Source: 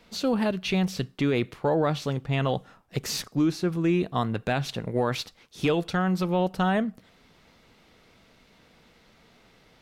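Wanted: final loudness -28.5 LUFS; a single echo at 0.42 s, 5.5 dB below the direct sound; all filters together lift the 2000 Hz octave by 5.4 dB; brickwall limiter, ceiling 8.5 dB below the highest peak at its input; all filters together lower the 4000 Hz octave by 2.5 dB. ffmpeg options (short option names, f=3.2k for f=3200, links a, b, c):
-af "equalizer=f=2k:t=o:g=9,equalizer=f=4k:t=o:g=-6.5,alimiter=limit=-20dB:level=0:latency=1,aecho=1:1:420:0.531,volume=1dB"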